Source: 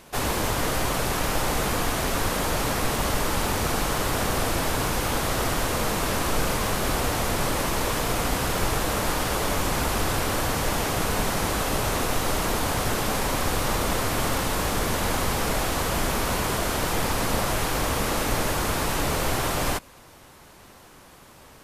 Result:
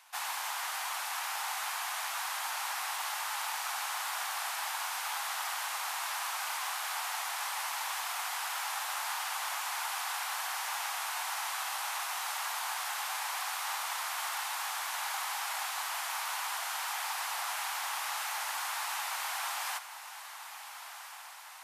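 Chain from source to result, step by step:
elliptic high-pass filter 800 Hz, stop band 60 dB
on a send: feedback delay with all-pass diffusion 1,438 ms, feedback 62%, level −12 dB
on the sum: level −7 dB

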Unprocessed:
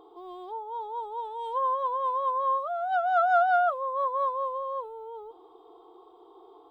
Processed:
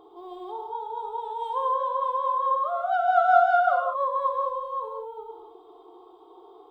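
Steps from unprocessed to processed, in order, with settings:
reverb whose tail is shaped and stops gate 260 ms flat, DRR 1 dB

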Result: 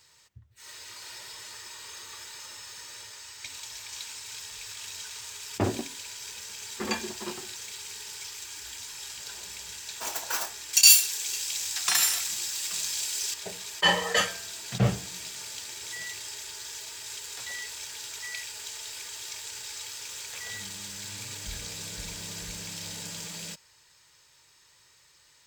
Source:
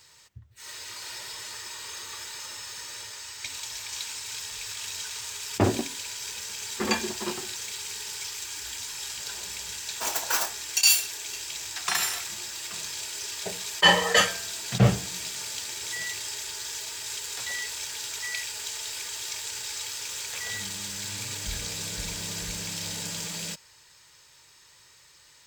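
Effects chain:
0:10.73–0:13.34: high-shelf EQ 2,700 Hz +10.5 dB
level −4.5 dB

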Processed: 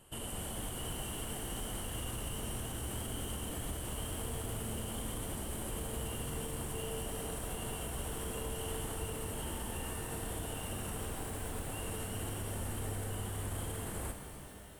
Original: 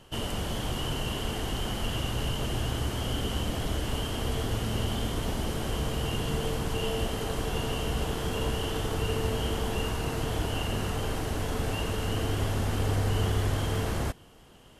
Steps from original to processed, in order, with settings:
0:11.00–0:11.69: phase distortion by the signal itself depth 0.19 ms
high shelf with overshoot 7,100 Hz +8 dB, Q 3
brickwall limiter −23.5 dBFS, peak gain reduction 8 dB
reverb with rising layers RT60 3.5 s, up +12 semitones, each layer −8 dB, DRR 5 dB
level −8 dB

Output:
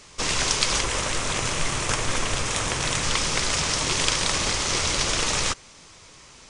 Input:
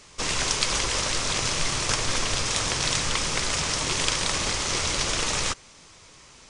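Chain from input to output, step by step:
0:00.81–0:03.03: parametric band 4,700 Hz −6.5 dB 0.94 octaves
level +2 dB

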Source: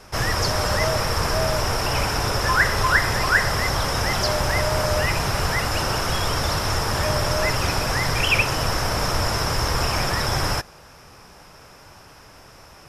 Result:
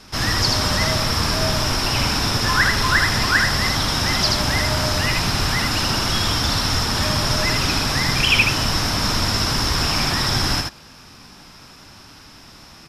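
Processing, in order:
octave-band graphic EQ 250/500/4,000 Hz +9/−7/+9 dB
on a send: single-tap delay 78 ms −3.5 dB
on the sum: level −1 dB

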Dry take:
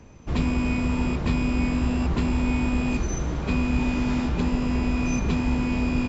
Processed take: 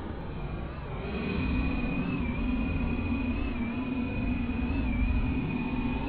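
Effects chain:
Butterworth low-pass 4,100 Hz 96 dB per octave
extreme stretch with random phases 14×, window 0.05 s, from 0:03.40
on a send: feedback echo with a high-pass in the loop 210 ms, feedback 83%, level −17 dB
on the sum: wow of a warped record 45 rpm, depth 100 cents
level −7 dB

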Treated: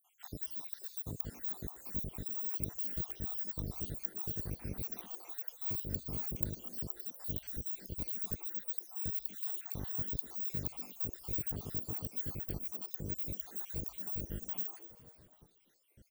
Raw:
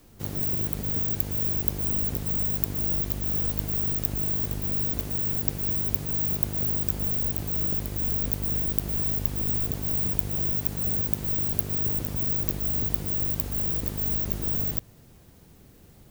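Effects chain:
time-frequency cells dropped at random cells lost 76%
echo with shifted repeats 242 ms, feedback 49%, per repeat +140 Hz, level −16 dB
on a send at −22 dB: convolution reverb RT60 0.60 s, pre-delay 100 ms
on the sum: level −6.5 dB

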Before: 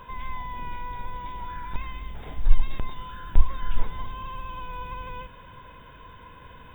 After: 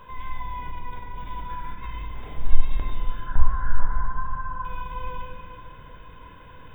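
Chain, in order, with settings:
0:00.71–0:02.03: compressor whose output falls as the input rises −35 dBFS, ratio −1
0:03.26–0:04.65: drawn EQ curve 170 Hz 0 dB, 380 Hz −7 dB, 1,600 Hz +10 dB, 2,400 Hz −19 dB
convolution reverb RT60 2.7 s, pre-delay 7 ms, DRR 0 dB
level −3 dB

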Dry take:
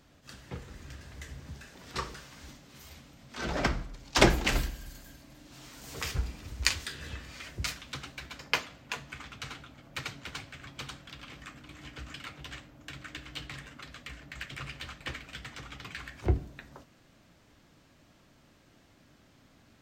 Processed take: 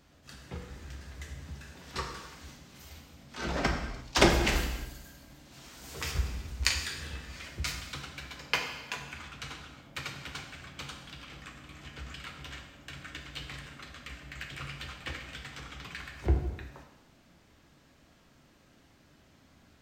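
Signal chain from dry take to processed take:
reverb whose tail is shaped and stops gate 380 ms falling, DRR 3.5 dB
level −1.5 dB

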